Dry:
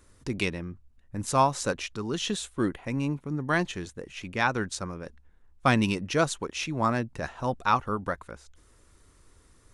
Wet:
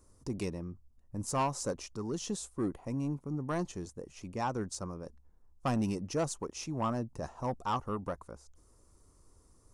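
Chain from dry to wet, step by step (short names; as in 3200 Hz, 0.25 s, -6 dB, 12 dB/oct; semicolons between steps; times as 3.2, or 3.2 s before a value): band shelf 2400 Hz -12.5 dB; soft clip -20.5 dBFS, distortion -13 dB; gain -4 dB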